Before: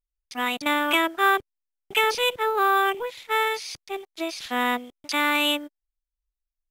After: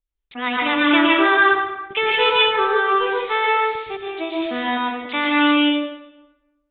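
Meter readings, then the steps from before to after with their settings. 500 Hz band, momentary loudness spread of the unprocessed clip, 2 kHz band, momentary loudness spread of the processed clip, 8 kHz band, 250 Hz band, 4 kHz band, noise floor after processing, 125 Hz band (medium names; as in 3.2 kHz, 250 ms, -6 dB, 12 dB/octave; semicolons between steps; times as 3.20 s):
+6.0 dB, 11 LU, +6.5 dB, 11 LU, under -40 dB, +11.0 dB, +5.5 dB, -74 dBFS, no reading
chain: steep low-pass 3.7 kHz 96 dB/octave; rotary cabinet horn 8 Hz, later 1.1 Hz, at 0.84 s; plate-style reverb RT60 1.1 s, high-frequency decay 0.7×, pre-delay 105 ms, DRR -3.5 dB; trim +4 dB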